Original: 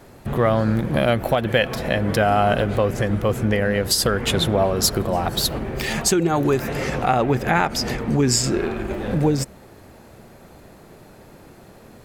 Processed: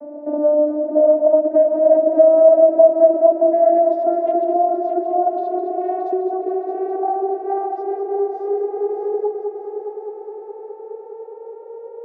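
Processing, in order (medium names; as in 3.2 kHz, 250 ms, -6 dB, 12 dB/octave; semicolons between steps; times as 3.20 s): vocoder on a note that slides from D4, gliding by +8 st; compression 6:1, threshold -32 dBFS, peak gain reduction 21 dB; resonant low-pass 640 Hz, resonance Q 7.8; on a send: multi-head delay 207 ms, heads first and third, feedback 65%, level -9 dB; on the sum: trim +6.5 dB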